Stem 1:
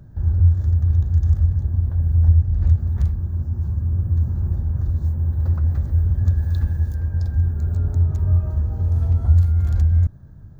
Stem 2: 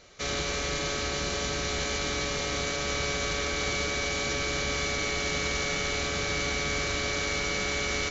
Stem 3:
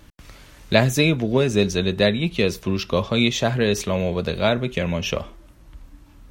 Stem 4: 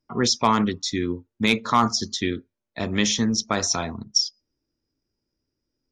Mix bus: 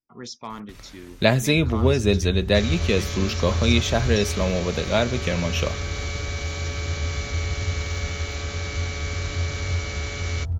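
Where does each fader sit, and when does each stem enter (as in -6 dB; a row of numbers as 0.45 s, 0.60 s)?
-9.0 dB, -3.5 dB, -1.5 dB, -16.0 dB; 1.40 s, 2.35 s, 0.50 s, 0.00 s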